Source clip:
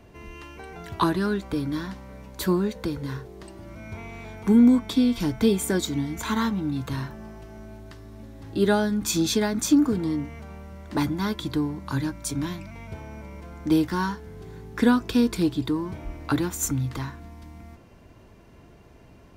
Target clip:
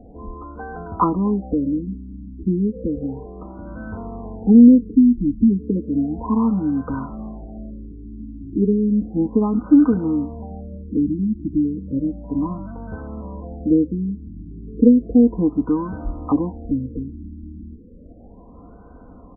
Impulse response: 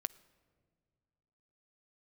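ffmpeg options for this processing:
-filter_complex "[0:a]asplit=2[a][b];[b]acompressor=threshold=-31dB:ratio=6,volume=-2.5dB[c];[a][c]amix=inputs=2:normalize=0,aecho=1:1:4:0.69,afftfilt=real='re*lt(b*sr/1024,380*pow(1600/380,0.5+0.5*sin(2*PI*0.33*pts/sr)))':imag='im*lt(b*sr/1024,380*pow(1600/380,0.5+0.5*sin(2*PI*0.33*pts/sr)))':win_size=1024:overlap=0.75,volume=2dB"

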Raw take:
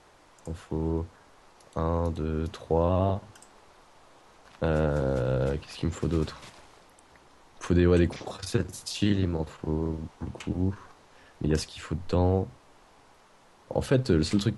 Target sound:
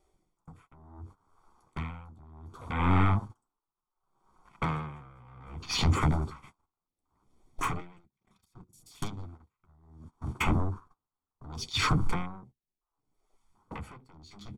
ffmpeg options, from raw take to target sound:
-filter_complex "[0:a]acompressor=threshold=-33dB:ratio=5,asplit=2[a][b];[b]adelay=80,highpass=300,lowpass=3.4k,asoftclip=type=hard:threshold=-30dB,volume=-16dB[c];[a][c]amix=inputs=2:normalize=0,aeval=exprs='0.0944*sin(PI/2*5.01*val(0)/0.0944)':c=same,equalizer=f=8.2k:t=o:w=0.6:g=3.5,afwtdn=0.0224,asettb=1/sr,asplit=3[d][e][f];[d]atrim=end=7.804[g];[e]atrim=start=7.8:end=10.39,asetpts=PTS-STARTPTS,afade=t=in:d=0.004:c=qsin,afade=t=out:st=2.586:d=0.004:c=qsin,acrossover=split=300|1800[h][i][j];[h]acompressor=threshold=-32dB:ratio=4[k];[i]acompressor=threshold=-39dB:ratio=4[l];[j]acompressor=threshold=-39dB:ratio=4[m];[k][l][m]amix=inputs=3:normalize=0[n];[f]atrim=start=10.386[o];[g][n]acrossfade=d=0.004:c1=hsin:c2=qsin[p];[p][o]acrossfade=d=0.004:c1=qsin:c2=hsin,flanger=delay=5.2:depth=8.2:regen=-35:speed=0.24:shape=sinusoidal,agate=range=-24dB:threshold=-35dB:ratio=16:detection=peak,highshelf=f=6.2k:g=11.5,aecho=1:1:0.9:0.67,aeval=exprs='val(0)*pow(10,-31*(0.5-0.5*cos(2*PI*0.67*n/s))/20)':c=same,volume=2.5dB"

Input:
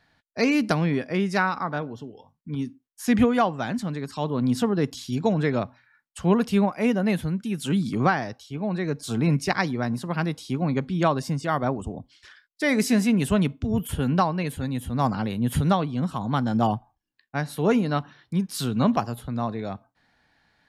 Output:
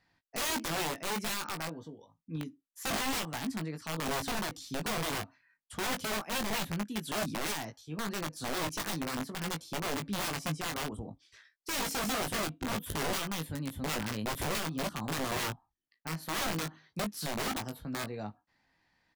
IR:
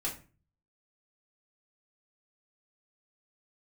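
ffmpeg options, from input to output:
-filter_complex "[0:a]asetrate=47628,aresample=44100,aeval=exprs='(mod(10*val(0)+1,2)-1)/10':c=same,asplit=2[a][b];[b]adelay=19,volume=-6.5dB[c];[a][c]amix=inputs=2:normalize=0,volume=-9dB"

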